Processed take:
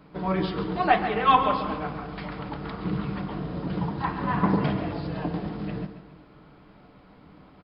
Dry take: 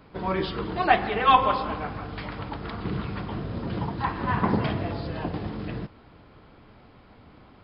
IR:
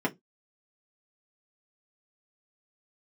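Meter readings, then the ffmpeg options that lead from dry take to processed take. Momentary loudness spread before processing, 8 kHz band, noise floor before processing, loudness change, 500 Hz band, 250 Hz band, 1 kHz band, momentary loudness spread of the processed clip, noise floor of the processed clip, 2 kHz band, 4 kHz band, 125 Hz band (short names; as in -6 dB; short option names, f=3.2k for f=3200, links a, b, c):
15 LU, n/a, -53 dBFS, 0.0 dB, 0.0 dB, +2.5 dB, -0.5 dB, 14 LU, -53 dBFS, -2.0 dB, -2.5 dB, +0.5 dB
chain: -filter_complex "[0:a]aecho=1:1:138|276|414|552:0.266|0.114|0.0492|0.0212,asplit=2[a][b];[1:a]atrim=start_sample=2205,asetrate=31311,aresample=44100[c];[b][c]afir=irnorm=-1:irlink=0,volume=-18.5dB[d];[a][d]amix=inputs=2:normalize=0,volume=-3dB"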